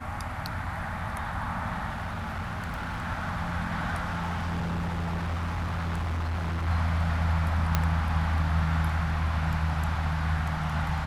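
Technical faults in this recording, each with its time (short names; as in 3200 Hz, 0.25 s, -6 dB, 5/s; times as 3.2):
1.89–3.07 clipped -29.5 dBFS
4.09–6.68 clipped -27 dBFS
7.75 pop -9 dBFS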